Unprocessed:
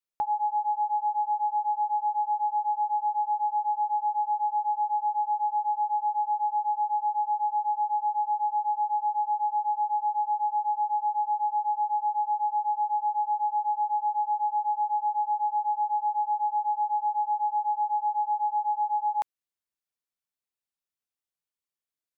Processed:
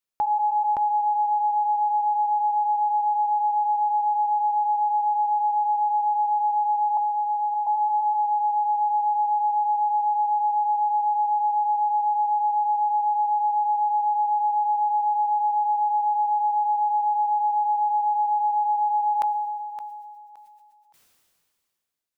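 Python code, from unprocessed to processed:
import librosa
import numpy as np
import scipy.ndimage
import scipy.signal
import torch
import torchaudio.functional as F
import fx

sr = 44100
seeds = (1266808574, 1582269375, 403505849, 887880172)

y = fx.highpass(x, sr, hz=900.0, slope=12, at=(6.97, 7.67))
y = fx.echo_feedback(y, sr, ms=568, feedback_pct=23, wet_db=-12)
y = fx.sustainer(y, sr, db_per_s=26.0)
y = y * 10.0 ** (3.5 / 20.0)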